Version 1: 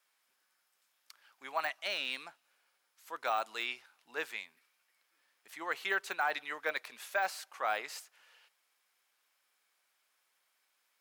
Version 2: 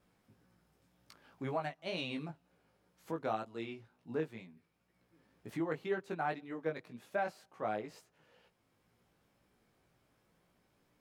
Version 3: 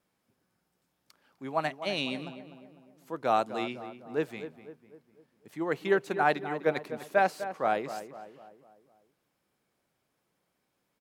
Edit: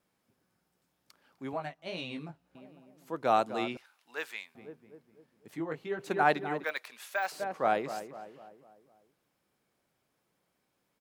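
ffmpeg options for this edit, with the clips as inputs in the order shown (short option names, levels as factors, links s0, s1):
-filter_complex "[1:a]asplit=2[s0][s1];[0:a]asplit=2[s2][s3];[2:a]asplit=5[s4][s5][s6][s7][s8];[s4]atrim=end=1.532[s9];[s0]atrim=start=1.528:end=2.552[s10];[s5]atrim=start=2.548:end=3.772[s11];[s2]atrim=start=3.768:end=4.552[s12];[s6]atrim=start=4.548:end=5.582[s13];[s1]atrim=start=5.578:end=5.992[s14];[s7]atrim=start=5.988:end=6.642[s15];[s3]atrim=start=6.638:end=7.322[s16];[s8]atrim=start=7.318[s17];[s9][s10]acrossfade=d=0.004:c1=hsin:c2=hsin[s18];[s18][s11]acrossfade=d=0.004:c1=hsin:c2=hsin[s19];[s19][s12]acrossfade=d=0.004:c1=hsin:c2=hsin[s20];[s20][s13]acrossfade=d=0.004:c1=hsin:c2=hsin[s21];[s21][s14]acrossfade=d=0.004:c1=hsin:c2=hsin[s22];[s22][s15]acrossfade=d=0.004:c1=hsin:c2=hsin[s23];[s23][s16]acrossfade=d=0.004:c1=hsin:c2=hsin[s24];[s24][s17]acrossfade=d=0.004:c1=hsin:c2=hsin"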